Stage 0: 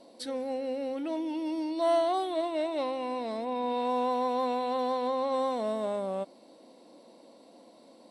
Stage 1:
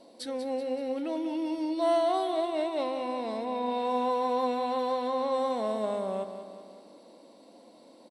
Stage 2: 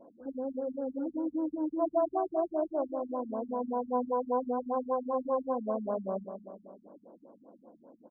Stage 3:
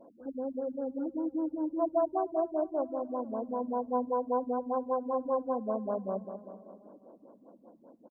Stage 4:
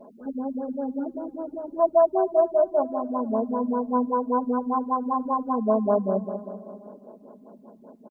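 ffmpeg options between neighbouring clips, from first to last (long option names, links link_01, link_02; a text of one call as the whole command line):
ffmpeg -i in.wav -af "aecho=1:1:190|380|570|760|950|1140:0.316|0.174|0.0957|0.0526|0.0289|0.0159" out.wav
ffmpeg -i in.wav -af "afftfilt=real='re*lt(b*sr/1024,230*pow(1700/230,0.5+0.5*sin(2*PI*5.1*pts/sr)))':imag='im*lt(b*sr/1024,230*pow(1700/230,0.5+0.5*sin(2*PI*5.1*pts/sr)))':win_size=1024:overlap=0.75" out.wav
ffmpeg -i in.wav -af "aecho=1:1:463|926|1389:0.0708|0.0326|0.015" out.wav
ffmpeg -i in.wav -af "aecho=1:1:4.8:1,volume=6dB" out.wav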